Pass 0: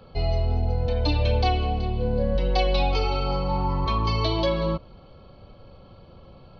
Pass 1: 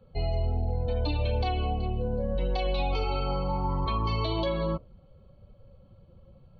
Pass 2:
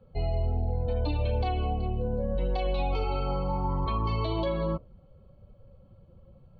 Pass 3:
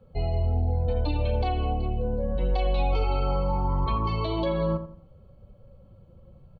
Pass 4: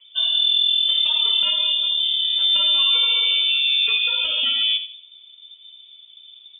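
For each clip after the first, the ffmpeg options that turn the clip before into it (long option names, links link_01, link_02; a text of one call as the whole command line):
ffmpeg -i in.wav -af "afftdn=noise_reduction=13:noise_floor=-40,equalizer=frequency=5000:width=6.8:gain=-11,alimiter=limit=-16dB:level=0:latency=1:release=45,volume=-3.5dB" out.wav
ffmpeg -i in.wav -af "highshelf=frequency=3300:gain=-9.5" out.wav
ffmpeg -i in.wav -filter_complex "[0:a]asplit=2[link_01][link_02];[link_02]adelay=85,lowpass=frequency=1600:poles=1,volume=-10dB,asplit=2[link_03][link_04];[link_04]adelay=85,lowpass=frequency=1600:poles=1,volume=0.34,asplit=2[link_05][link_06];[link_06]adelay=85,lowpass=frequency=1600:poles=1,volume=0.34,asplit=2[link_07][link_08];[link_08]adelay=85,lowpass=frequency=1600:poles=1,volume=0.34[link_09];[link_01][link_03][link_05][link_07][link_09]amix=inputs=5:normalize=0,volume=2dB" out.wav
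ffmpeg -i in.wav -af "lowpass=frequency=3100:width_type=q:width=0.5098,lowpass=frequency=3100:width_type=q:width=0.6013,lowpass=frequency=3100:width_type=q:width=0.9,lowpass=frequency=3100:width_type=q:width=2.563,afreqshift=-3600,volume=5dB" out.wav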